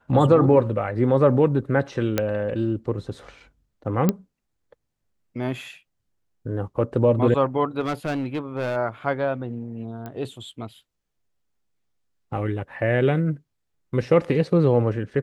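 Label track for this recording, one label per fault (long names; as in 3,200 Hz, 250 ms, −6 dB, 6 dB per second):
2.180000	2.180000	click −7 dBFS
4.090000	4.090000	click −7 dBFS
7.800000	8.770000	clipping −21.5 dBFS
10.060000	10.060000	click −22 dBFS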